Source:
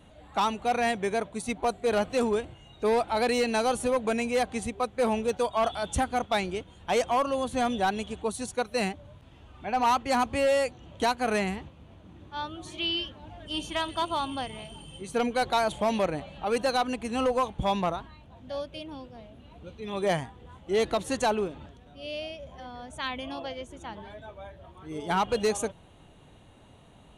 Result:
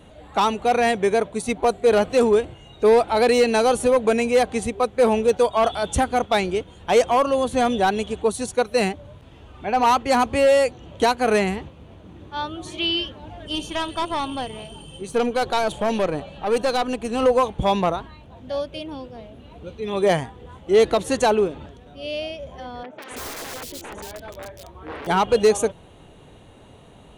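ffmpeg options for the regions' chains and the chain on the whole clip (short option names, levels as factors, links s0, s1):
-filter_complex "[0:a]asettb=1/sr,asplit=3[s0][s1][s2];[s0]atrim=end=13.554[s3];[s1]atrim=start=13.55:end=17.23,asetpts=PTS-STARTPTS,afade=t=in:d=0.004:c=qsin,afade=t=out:st=3.676:d=0.004:c=qsin,bandreject=f=2100:w=9,aeval=exprs='(tanh(12.6*val(0)+0.45)-tanh(0.45))/12.6':c=same[s4];[s2]atrim=start=17.226[s5];[s3][s4]acrossfade=d=0.004:c1=hsin:c2=qsin[s6];[s6][s5]acrossfade=d=0.004:c1=qsin:c2=hsin,asettb=1/sr,asplit=3[s7][s8][s9];[s7]atrim=end=22.834[s10];[s8]atrim=start=22.83:end=25.07,asetpts=PTS-STARTPTS,afade=t=in:d=0.004:c=qsin,afade=t=out:st=2.236:d=0.004:c=qsin,aeval=exprs='(mod(56.2*val(0)+1,2)-1)/56.2':c=same,acrossover=split=170|3000[s11][s12][s13];[s13]adelay=180[s14];[s11]adelay=280[s15];[s15][s12][s14]amix=inputs=3:normalize=0,atrim=end_sample=98784[s16];[s9]atrim=start=25.066[s17];[s10][s16]acrossfade=d=0.004:c1=hsin:c2=qsin[s18];[s18][s17]acrossfade=d=0.004:c1=qsin:c2=hsin,equalizer=f=440:t=o:w=0.61:g=5,acontrast=53"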